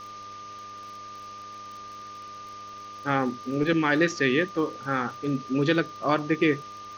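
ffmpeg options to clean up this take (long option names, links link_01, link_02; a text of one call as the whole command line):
ffmpeg -i in.wav -af "adeclick=threshold=4,bandreject=frequency=101.4:width_type=h:width=4,bandreject=frequency=202.8:width_type=h:width=4,bandreject=frequency=304.2:width_type=h:width=4,bandreject=frequency=405.6:width_type=h:width=4,bandreject=frequency=507:width_type=h:width=4,bandreject=frequency=608.4:width_type=h:width=4,bandreject=frequency=1200:width=30,afwtdn=0.0045" out.wav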